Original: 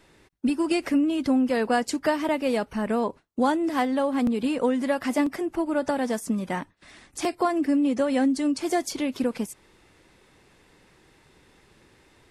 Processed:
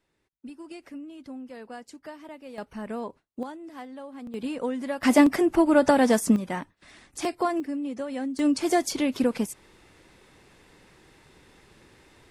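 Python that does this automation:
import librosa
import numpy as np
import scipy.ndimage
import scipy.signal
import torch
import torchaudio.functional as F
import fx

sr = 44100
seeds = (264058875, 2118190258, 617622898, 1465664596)

y = fx.gain(x, sr, db=fx.steps((0.0, -18.0), (2.58, -8.5), (3.43, -16.5), (4.34, -6.0), (5.03, 6.5), (6.36, -2.0), (7.6, -9.0), (8.39, 2.0)))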